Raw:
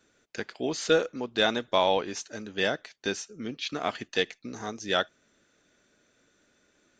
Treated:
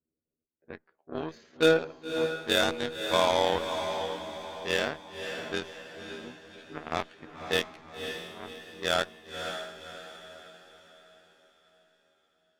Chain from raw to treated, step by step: low-pass opened by the level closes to 370 Hz, open at -22.5 dBFS; spectral gate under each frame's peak -30 dB strong; added harmonics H 7 -18 dB, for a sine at -9.5 dBFS; in parallel at -9.5 dB: wavefolder -20 dBFS; on the sum: granular stretch 1.8×, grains 56 ms; on a send: diffused feedback echo 0.556 s, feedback 44%, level -7 dB

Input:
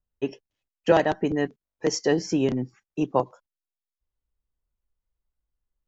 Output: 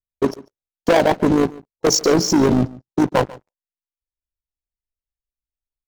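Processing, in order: elliptic band-stop 920–3800 Hz; sample leveller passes 5; AM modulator 53 Hz, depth 40%; on a send: echo 0.143 s -20.5 dB; on the sum: mismatched tape noise reduction decoder only

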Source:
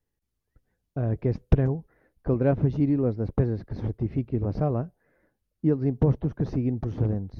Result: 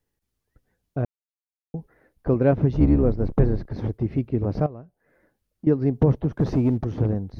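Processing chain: 2.73–3.7 octaver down 2 oct, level +2 dB; low shelf 140 Hz -4 dB; 1.05–1.74 mute; 4.66–5.67 compressor 5:1, threshold -42 dBFS, peak gain reduction 16.5 dB; 6.35–6.78 sample leveller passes 1; gain +4.5 dB

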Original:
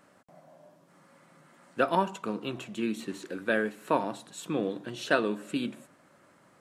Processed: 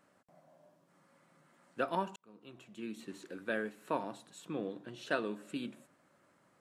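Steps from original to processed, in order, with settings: 2.16–3.2 fade in; 4.38–5.07 high shelf 4100 Hz -5.5 dB; gain -8.5 dB

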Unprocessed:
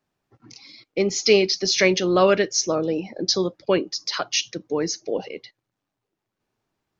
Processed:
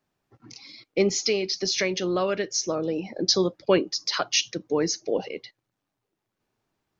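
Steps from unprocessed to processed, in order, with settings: 1.15–3.18 compressor 3:1, threshold -24 dBFS, peak gain reduction 10 dB

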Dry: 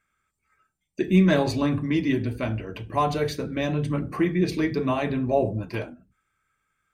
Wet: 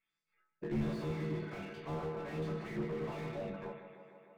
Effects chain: spectral limiter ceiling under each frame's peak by 13 dB; resonator bank D3 major, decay 0.71 s; LFO low-pass sine 0.81 Hz 980–5200 Hz; granular stretch 0.63×, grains 26 ms; tape echo 0.151 s, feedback 79%, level -13 dB, low-pass 4700 Hz; slew limiter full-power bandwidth 4 Hz; gain +5.5 dB

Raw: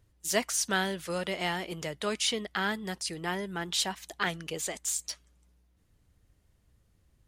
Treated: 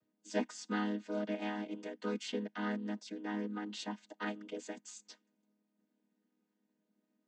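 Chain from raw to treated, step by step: chord vocoder minor triad, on G#3; gain -5.5 dB

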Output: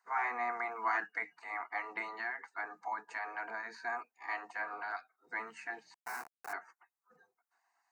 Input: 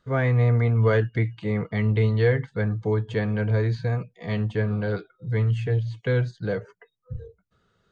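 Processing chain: spectral gate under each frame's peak -15 dB weak; 2.08–3.79 compressor 6:1, threshold -34 dBFS, peak gain reduction 8 dB; 5.94–6.53 Schmitt trigger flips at -38 dBFS; resonant high-pass 710 Hz, resonance Q 4.7; fixed phaser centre 1400 Hz, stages 4

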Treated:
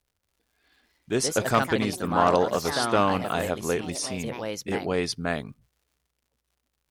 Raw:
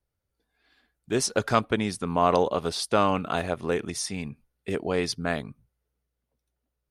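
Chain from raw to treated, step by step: crackle 140/s -57 dBFS; echoes that change speed 0.302 s, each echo +3 st, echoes 3, each echo -6 dB

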